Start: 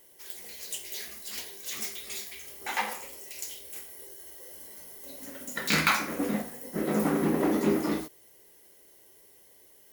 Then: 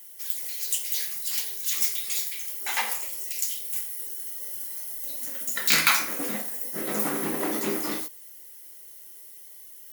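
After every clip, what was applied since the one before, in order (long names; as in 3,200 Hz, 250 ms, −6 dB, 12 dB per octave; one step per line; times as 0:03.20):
spectral tilt +3 dB per octave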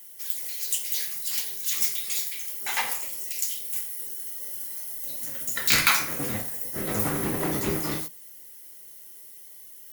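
sub-octave generator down 1 octave, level 0 dB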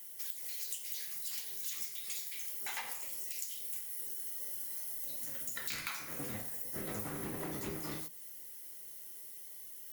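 downward compressor 8 to 1, threshold −34 dBFS, peak gain reduction 18.5 dB
level −3 dB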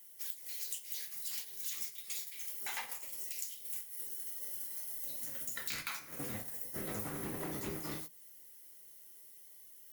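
noise gate −41 dBFS, range −7 dB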